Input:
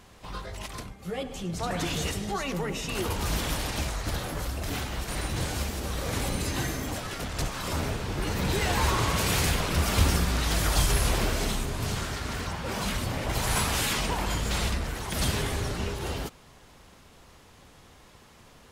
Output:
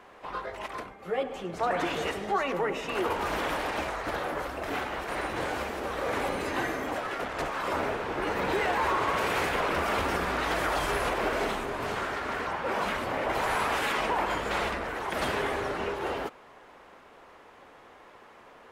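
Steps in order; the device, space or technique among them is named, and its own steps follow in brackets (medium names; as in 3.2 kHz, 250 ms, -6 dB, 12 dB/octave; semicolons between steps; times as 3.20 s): DJ mixer with the lows and highs turned down (three-band isolator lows -20 dB, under 310 Hz, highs -18 dB, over 2.4 kHz; peak limiter -24.5 dBFS, peak gain reduction 5.5 dB); trim +6 dB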